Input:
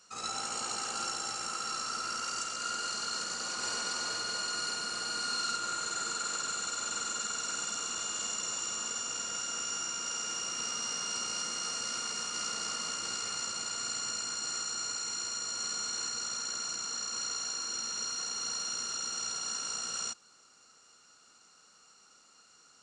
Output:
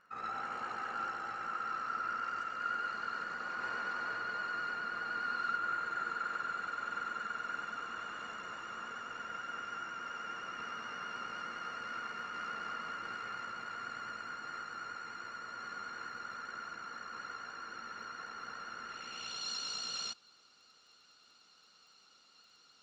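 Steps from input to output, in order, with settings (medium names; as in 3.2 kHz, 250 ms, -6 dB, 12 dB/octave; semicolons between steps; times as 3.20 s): vibrato 9.6 Hz 31 cents; low-pass sweep 1.7 kHz -> 3.9 kHz, 18.82–19.46 s; crackle 16 per s -55 dBFS; trim -4.5 dB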